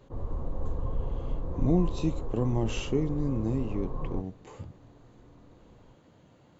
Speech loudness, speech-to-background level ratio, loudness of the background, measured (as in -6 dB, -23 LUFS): -31.0 LUFS, 6.5 dB, -37.5 LUFS